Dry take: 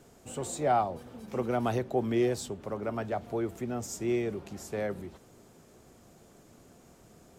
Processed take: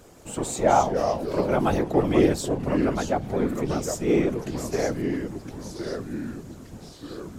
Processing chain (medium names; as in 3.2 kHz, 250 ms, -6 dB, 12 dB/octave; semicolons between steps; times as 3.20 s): whisper effect; ever faster or slower copies 168 ms, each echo -3 st, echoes 3, each echo -6 dB; trim +6.5 dB